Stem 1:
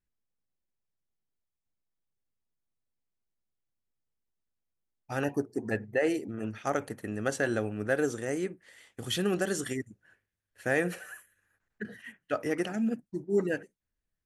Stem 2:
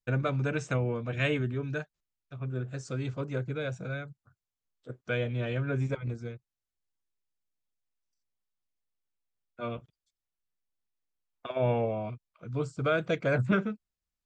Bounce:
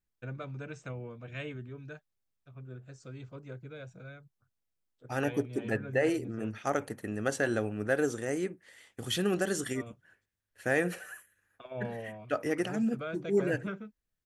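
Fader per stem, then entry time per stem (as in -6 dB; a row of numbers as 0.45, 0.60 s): -0.5, -11.5 dB; 0.00, 0.15 s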